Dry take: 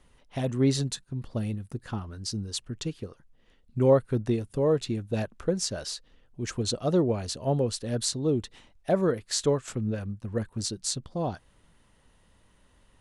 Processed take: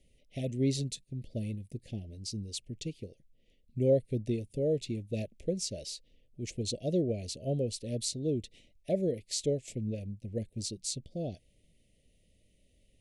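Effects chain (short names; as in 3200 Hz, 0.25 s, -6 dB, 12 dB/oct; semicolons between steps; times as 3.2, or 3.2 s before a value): elliptic band-stop 620–2200 Hz, stop band 50 dB; gain -5 dB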